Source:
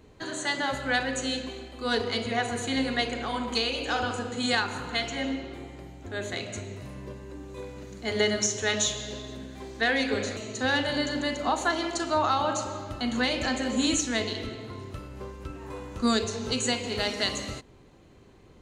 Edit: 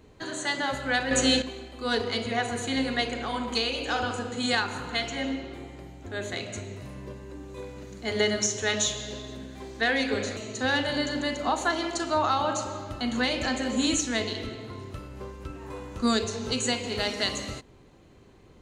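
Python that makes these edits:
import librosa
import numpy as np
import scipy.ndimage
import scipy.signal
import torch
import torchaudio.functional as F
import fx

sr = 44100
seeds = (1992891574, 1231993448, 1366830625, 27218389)

y = fx.edit(x, sr, fx.clip_gain(start_s=1.11, length_s=0.31, db=8.0), tone=tone)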